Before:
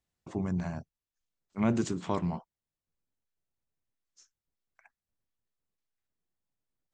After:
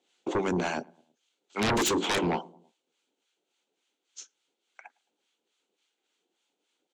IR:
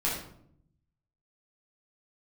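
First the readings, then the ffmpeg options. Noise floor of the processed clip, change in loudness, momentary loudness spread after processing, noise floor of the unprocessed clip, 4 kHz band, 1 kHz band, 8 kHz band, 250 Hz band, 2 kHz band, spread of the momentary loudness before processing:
-83 dBFS, +4.0 dB, 20 LU, under -85 dBFS, +18.0 dB, +8.5 dB, +13.0 dB, +0.5 dB, +13.5 dB, 14 LU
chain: -filter_complex "[0:a]highpass=f=320:w=0.5412,highpass=f=320:w=1.3066,equalizer=f=630:t=q:w=4:g=-8,equalizer=f=1.1k:t=q:w=4:g=-10,equalizer=f=1.8k:t=q:w=4:g=-9,equalizer=f=3.2k:t=q:w=4:g=5,equalizer=f=5.2k:t=q:w=4:g=-9,lowpass=f=7k:w=0.5412,lowpass=f=7k:w=1.3066,acrossover=split=860[a][b];[a]aeval=exprs='val(0)*(1-0.7/2+0.7/2*cos(2*PI*3.5*n/s))':c=same[c];[b]aeval=exprs='val(0)*(1-0.7/2-0.7/2*cos(2*PI*3.5*n/s))':c=same[d];[c][d]amix=inputs=2:normalize=0,asplit=2[e][f];[f]adelay=108,lowpass=f=940:p=1,volume=-24dB,asplit=2[g][h];[h]adelay=108,lowpass=f=940:p=1,volume=0.52,asplit=2[i][j];[j]adelay=108,lowpass=f=940:p=1,volume=0.52[k];[e][g][i][k]amix=inputs=4:normalize=0,aeval=exprs='0.0794*sin(PI/2*8.91*val(0)/0.0794)':c=same"

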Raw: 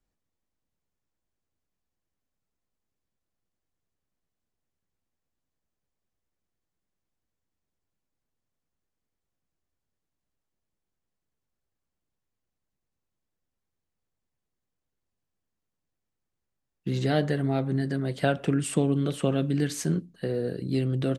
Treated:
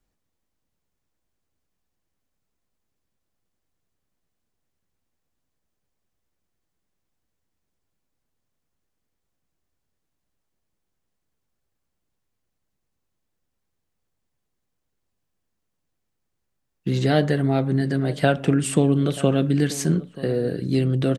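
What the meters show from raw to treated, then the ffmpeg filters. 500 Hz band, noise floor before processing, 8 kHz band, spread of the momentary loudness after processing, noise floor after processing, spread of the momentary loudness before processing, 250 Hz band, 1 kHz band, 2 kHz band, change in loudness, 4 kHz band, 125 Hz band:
+5.5 dB, -84 dBFS, +5.5 dB, 5 LU, -78 dBFS, 5 LU, +5.5 dB, +5.5 dB, +5.5 dB, +5.5 dB, +5.5 dB, +5.5 dB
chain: -filter_complex "[0:a]asplit=2[a][b];[b]adelay=932.9,volume=-17dB,highshelf=f=4k:g=-21[c];[a][c]amix=inputs=2:normalize=0,volume=5.5dB"

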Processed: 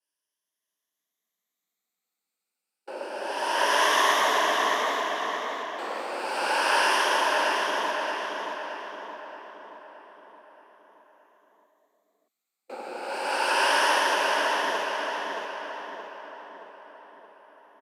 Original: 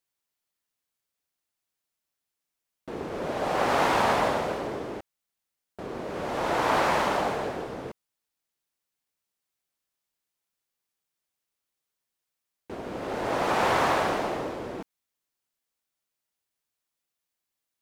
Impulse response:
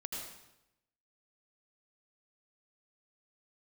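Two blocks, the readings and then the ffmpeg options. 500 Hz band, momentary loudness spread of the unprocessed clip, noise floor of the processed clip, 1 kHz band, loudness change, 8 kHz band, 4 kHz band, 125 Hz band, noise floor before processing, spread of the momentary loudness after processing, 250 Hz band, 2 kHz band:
-0.5 dB, 16 LU, under -85 dBFS, +3.0 dB, +2.0 dB, +8.5 dB, +9.5 dB, under -20 dB, under -85 dBFS, 20 LU, -6.5 dB, +7.0 dB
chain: -filter_complex "[0:a]afftfilt=real='re*pow(10,12/40*sin(2*PI*(1.1*log(max(b,1)*sr/1024/100)/log(2)-(0.29)*(pts-256)/sr)))':imag='im*pow(10,12/40*sin(2*PI*(1.1*log(max(b,1)*sr/1024/100)/log(2)-(0.29)*(pts-256)/sr)))':win_size=1024:overlap=0.75,highshelf=f=3.3k:g=2,acrossover=split=170|4300[a][b][c];[a]alimiter=level_in=15dB:limit=-24dB:level=0:latency=1:release=26,volume=-15dB[d];[d][b][c]amix=inputs=3:normalize=0,afreqshift=170,asplit=2[e][f];[f]adelay=623,lowpass=f=4.9k:p=1,volume=-3dB,asplit=2[g][h];[h]adelay=623,lowpass=f=4.9k:p=1,volume=0.54,asplit=2[i][j];[j]adelay=623,lowpass=f=4.9k:p=1,volume=0.54,asplit=2[k][l];[l]adelay=623,lowpass=f=4.9k:p=1,volume=0.54,asplit=2[m][n];[n]adelay=623,lowpass=f=4.9k:p=1,volume=0.54,asplit=2[o][p];[p]adelay=623,lowpass=f=4.9k:p=1,volume=0.54,asplit=2[q][r];[r]adelay=623,lowpass=f=4.9k:p=1,volume=0.54[s];[g][i][k][m][o][q][s]amix=inputs=7:normalize=0[t];[e][t]amix=inputs=2:normalize=0,aresample=32000,aresample=44100,adynamicequalizer=threshold=0.0141:dfrequency=1700:dqfactor=0.7:tfrequency=1700:tqfactor=0.7:attack=5:release=100:ratio=0.375:range=3.5:mode=boostabove:tftype=highshelf,volume=-3dB"

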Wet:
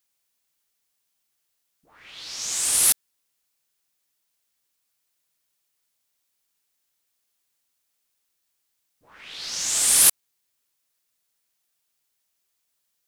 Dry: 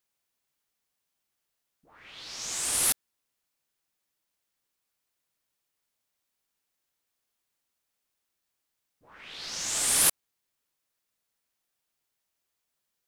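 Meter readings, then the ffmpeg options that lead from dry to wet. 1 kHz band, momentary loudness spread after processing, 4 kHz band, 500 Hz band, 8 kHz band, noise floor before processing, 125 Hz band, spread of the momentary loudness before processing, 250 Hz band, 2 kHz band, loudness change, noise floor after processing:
+1.0 dB, 17 LU, +5.5 dB, +0.5 dB, +7.0 dB, -82 dBFS, n/a, 19 LU, 0.0 dB, +3.0 dB, +7.0 dB, -76 dBFS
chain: -af "highshelf=f=2.6k:g=7.5"

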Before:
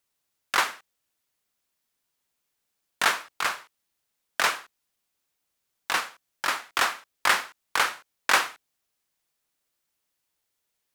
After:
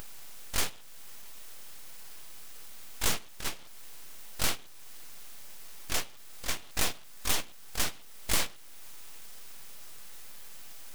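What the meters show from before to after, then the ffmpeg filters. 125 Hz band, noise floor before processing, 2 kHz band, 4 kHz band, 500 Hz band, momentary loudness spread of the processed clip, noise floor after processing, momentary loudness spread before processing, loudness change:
n/a, -80 dBFS, -13.0 dB, -5.0 dB, -5.5 dB, 17 LU, -46 dBFS, 12 LU, -7.0 dB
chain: -filter_complex "[0:a]aeval=exprs='val(0)+0.5*0.0355*sgn(val(0))':c=same,afftfilt=real='re*lt(hypot(re,im),0.178)':imag='im*lt(hypot(re,im),0.178)':win_size=1024:overlap=0.75,bandreject=f=2.1k:w=6.6,agate=range=-14dB:threshold=-27dB:ratio=16:detection=peak,asplit=2[a][b];[b]acompressor=mode=upward:threshold=-34dB:ratio=2.5,volume=2dB[c];[a][c]amix=inputs=2:normalize=0,aeval=exprs='abs(val(0))':c=same,volume=-4.5dB"

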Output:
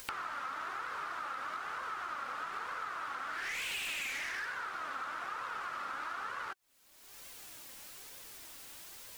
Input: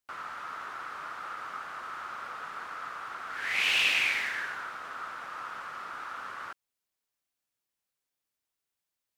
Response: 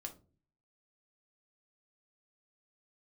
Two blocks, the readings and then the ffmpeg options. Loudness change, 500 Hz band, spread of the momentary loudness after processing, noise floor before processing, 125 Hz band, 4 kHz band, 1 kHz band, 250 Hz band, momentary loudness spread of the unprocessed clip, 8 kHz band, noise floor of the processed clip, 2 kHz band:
-7.0 dB, -1.5 dB, 12 LU, under -85 dBFS, n/a, -10.0 dB, -1.0 dB, -2.0 dB, 15 LU, -1.0 dB, -59 dBFS, -7.0 dB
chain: -af "volume=32.5dB,asoftclip=hard,volume=-32.5dB,acompressor=mode=upward:threshold=-38dB:ratio=2.5,flanger=delay=1.8:depth=2.1:regen=51:speed=1.1:shape=triangular,acompressor=threshold=-52dB:ratio=6,volume=14dB"

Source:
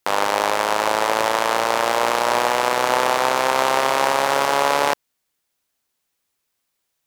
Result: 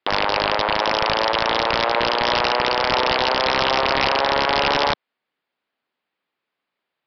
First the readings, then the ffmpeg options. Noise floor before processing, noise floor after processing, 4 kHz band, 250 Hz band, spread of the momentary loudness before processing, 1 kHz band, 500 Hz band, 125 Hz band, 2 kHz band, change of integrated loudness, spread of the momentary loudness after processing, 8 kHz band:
-76 dBFS, -83 dBFS, +5.0 dB, +1.5 dB, 2 LU, -1.5 dB, -1.0 dB, +6.0 dB, +1.0 dB, 0.0 dB, 2 LU, -14.0 dB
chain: -filter_complex "[0:a]aeval=exprs='(tanh(2*val(0)+0.1)-tanh(0.1))/2':c=same,acrossover=split=360[a][b];[a]acompressor=threshold=-46dB:ratio=2[c];[c][b]amix=inputs=2:normalize=0,acrossover=split=150 3500:gain=0.0891 1 0.0708[d][e][f];[d][e][f]amix=inputs=3:normalize=0,aresample=11025,aeval=exprs='(mod(3.76*val(0)+1,2)-1)/3.76':c=same,aresample=44100,volume=2dB"

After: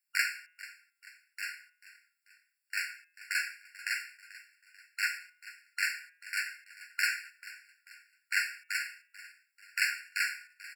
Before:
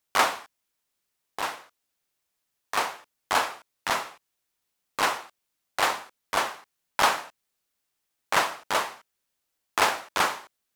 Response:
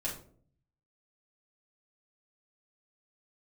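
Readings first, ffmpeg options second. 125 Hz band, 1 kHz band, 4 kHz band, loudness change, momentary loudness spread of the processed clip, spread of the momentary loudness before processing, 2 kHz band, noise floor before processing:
under -40 dB, -20.5 dB, -8.0 dB, -7.0 dB, 19 LU, 16 LU, -2.0 dB, -80 dBFS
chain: -filter_complex "[0:a]bandreject=f=162.7:t=h:w=4,bandreject=f=325.4:t=h:w=4,bandreject=f=488.1:t=h:w=4,bandreject=f=650.8:t=h:w=4,bandreject=f=813.5:t=h:w=4,bandreject=f=976.2:t=h:w=4,bandreject=f=1.1389k:t=h:w=4,bandreject=f=1.3016k:t=h:w=4,bandreject=f=1.4643k:t=h:w=4,bandreject=f=1.627k:t=h:w=4,bandreject=f=1.7897k:t=h:w=4,bandreject=f=1.9524k:t=h:w=4,bandreject=f=2.1151k:t=h:w=4,bandreject=f=2.2778k:t=h:w=4,bandreject=f=2.4405k:t=h:w=4,bandreject=f=2.6032k:t=h:w=4,bandreject=f=2.7659k:t=h:w=4,bandreject=f=2.9286k:t=h:w=4,bandreject=f=3.0913k:t=h:w=4,bandreject=f=3.254k:t=h:w=4,asplit=5[a][b][c][d][e];[b]adelay=439,afreqshift=-56,volume=-17dB[f];[c]adelay=878,afreqshift=-112,volume=-23.6dB[g];[d]adelay=1317,afreqshift=-168,volume=-30.1dB[h];[e]adelay=1756,afreqshift=-224,volume=-36.7dB[i];[a][f][g][h][i]amix=inputs=5:normalize=0,afftfilt=real='re*eq(mod(floor(b*sr/1024/1400),2),1)':imag='im*eq(mod(floor(b*sr/1024/1400),2),1)':win_size=1024:overlap=0.75,volume=-2dB"

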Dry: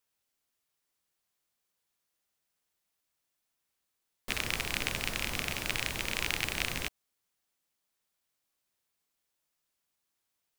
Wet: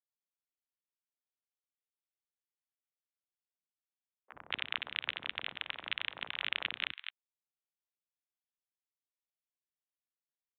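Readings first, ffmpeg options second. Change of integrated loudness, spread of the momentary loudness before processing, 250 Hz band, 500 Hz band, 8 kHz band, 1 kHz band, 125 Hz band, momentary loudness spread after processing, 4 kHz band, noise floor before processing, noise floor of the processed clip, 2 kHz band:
-4.5 dB, 6 LU, -16.5 dB, -12.0 dB, under -40 dB, -6.0 dB, -20.0 dB, 7 LU, -2.5 dB, -83 dBFS, under -85 dBFS, -4.0 dB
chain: -filter_complex "[0:a]aeval=exprs='0.376*(cos(1*acos(clip(val(0)/0.376,-1,1)))-cos(1*PI/2))+0.0596*(cos(7*acos(clip(val(0)/0.376,-1,1)))-cos(7*PI/2))':c=same,highpass=51,lowshelf=f=67:g=-9,acrossover=split=360|1200[a][b][c];[a]adelay=40[d];[c]adelay=220[e];[d][b][e]amix=inputs=3:normalize=0,aresample=8000,aresample=44100"

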